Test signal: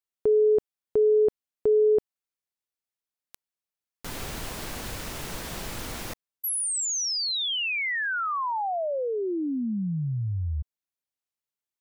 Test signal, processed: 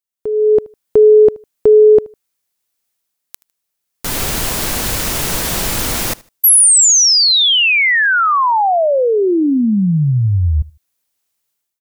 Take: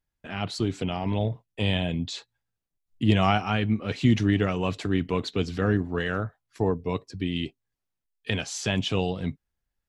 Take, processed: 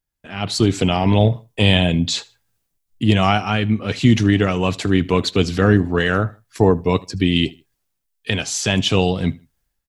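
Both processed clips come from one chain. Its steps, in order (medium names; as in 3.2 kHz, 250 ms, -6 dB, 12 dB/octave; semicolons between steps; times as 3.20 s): treble shelf 5.4 kHz +7.5 dB; level rider gain up to 16 dB; feedback delay 77 ms, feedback 28%, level -23 dB; trim -1 dB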